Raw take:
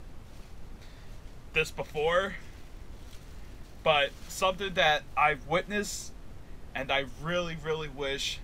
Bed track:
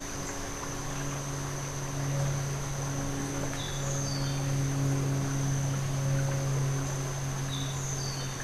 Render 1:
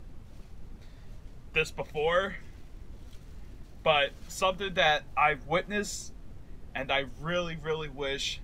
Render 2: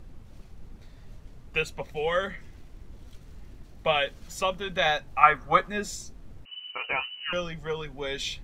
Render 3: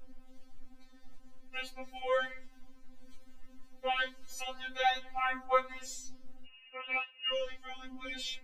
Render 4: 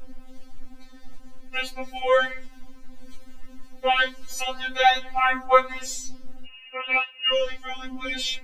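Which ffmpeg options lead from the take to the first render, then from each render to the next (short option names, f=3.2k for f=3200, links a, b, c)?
-af "afftdn=nr=6:nf=-48"
-filter_complex "[0:a]asettb=1/sr,asplit=3[a][b][c];[a]atrim=end=5.234[d];[b]atrim=start=5.23:end=5.69,asetpts=PTS-STARTPTS,afade=t=in:d=0.004:c=qsin,afade=t=out:st=0.456:d=0.004:c=qsin,equalizer=f=1.2k:t=o:w=0.75:g=15[e];[c]atrim=start=5.686[f];[d][e]acrossfade=d=0.004:c1=hsin:c2=qsin[g];[g][f]acrossfade=d=0.004:c1=qsin:c2=hsin,asettb=1/sr,asplit=3[h][i][j];[h]atrim=end=6.454[k];[i]atrim=start=6.45:end=7.33,asetpts=PTS-STARTPTS,afade=t=in:d=0.004:c=qsin,afade=t=out:st=0.876:d=0.004:c=qsin,lowpass=f=2.6k:t=q:w=0.5098,lowpass=f=2.6k:t=q:w=0.6013,lowpass=f=2.6k:t=q:w=0.9,lowpass=f=2.6k:t=q:w=2.563,afreqshift=-3000[l];[j]atrim=start=7.326[m];[k][l]acrossfade=d=0.004:c1=hsin:c2=qsin[n];[n][m]acrossfade=d=0.004:c1=qsin:c2=hsin"
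-af "flanger=delay=5.5:depth=7.1:regen=89:speed=1.7:shape=sinusoidal,afftfilt=real='re*3.46*eq(mod(b,12),0)':imag='im*3.46*eq(mod(b,12),0)':win_size=2048:overlap=0.75"
-af "volume=11.5dB"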